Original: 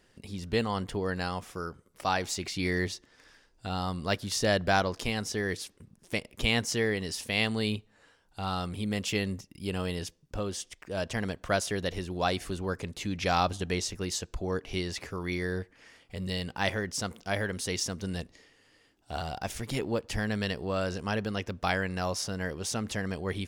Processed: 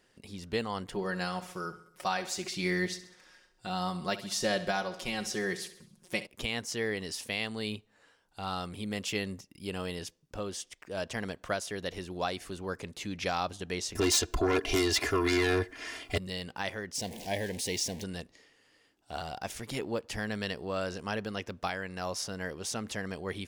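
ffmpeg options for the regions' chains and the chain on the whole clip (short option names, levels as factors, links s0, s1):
-filter_complex "[0:a]asettb=1/sr,asplit=3[s0][s1][s2];[s0]atrim=end=0.924[s3];[s1]atrim=start=0.92:end=6.27,asetpts=PTS-STARTPTS,afade=t=in:d=0.004:c=qsin,afade=t=out:st=5.346:d=0.004:c=qsin,aecho=1:1:5.5:0.71,atrim=end_sample=235935,aecho=1:1:66|132|198|264|330:0.2|0.104|0.054|0.0281|0.0146,atrim=end_sample=235935[s4];[s2]atrim=start=6.266[s5];[s3][s4]acrossfade=d=0.004:c1=hsin:c2=qsin[s6];[s6][s5]acrossfade=d=0.004:c1=qsin:c2=hsin,asettb=1/sr,asplit=3[s7][s8][s9];[s7]atrim=end=13.954[s10];[s8]atrim=start=13.95:end=16.18,asetpts=PTS-STARTPTS,afade=t=in:d=0.004:c=qsin,afade=t=out:st=2.226:d=0.004:c=qsin,aeval=exprs='0.15*sin(PI/2*3.98*val(0)/0.15)':c=same,aecho=1:1:2.9:0.78,atrim=end_sample=98343[s11];[s9]atrim=start=16.176[s12];[s10][s11]acrossfade=d=0.004:c1=hsin:c2=qsin[s13];[s13][s12]acrossfade=d=0.004:c1=qsin:c2=hsin,asettb=1/sr,asplit=3[s14][s15][s16];[s14]atrim=end=16.954[s17];[s15]atrim=start=16.95:end=18.04,asetpts=PTS-STARTPTS,afade=t=in:d=0.004:c=qsin,afade=t=out:st=1.086:d=0.004:c=qsin,aeval=exprs='val(0)+0.5*0.0168*sgn(val(0))':c=same,asuperstop=centerf=1300:order=4:qfactor=1.4[s18];[s16]atrim=start=18.036[s19];[s17][s18]acrossfade=d=0.004:c1=hsin:c2=qsin[s20];[s20][s19]acrossfade=d=0.004:c1=qsin:c2=hsin,lowshelf=f=140:g=-8.5,alimiter=limit=0.158:level=0:latency=1:release=492,volume=0.794"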